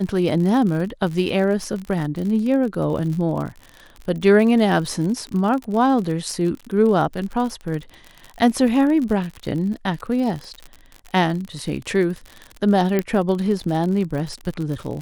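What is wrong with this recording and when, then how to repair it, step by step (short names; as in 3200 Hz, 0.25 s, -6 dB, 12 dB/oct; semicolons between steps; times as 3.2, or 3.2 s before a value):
crackle 59/s -27 dBFS
12.99 pop -8 dBFS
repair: de-click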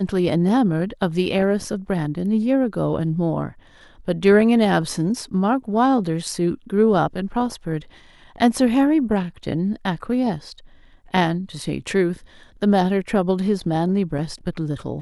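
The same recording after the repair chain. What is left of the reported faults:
none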